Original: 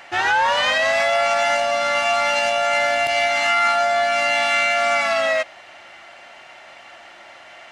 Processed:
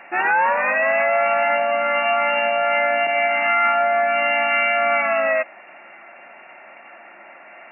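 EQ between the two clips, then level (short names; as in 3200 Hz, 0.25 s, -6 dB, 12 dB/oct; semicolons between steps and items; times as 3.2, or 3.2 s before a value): brick-wall FIR band-pass 160–2800 Hz; low shelf 210 Hz +6 dB; 0.0 dB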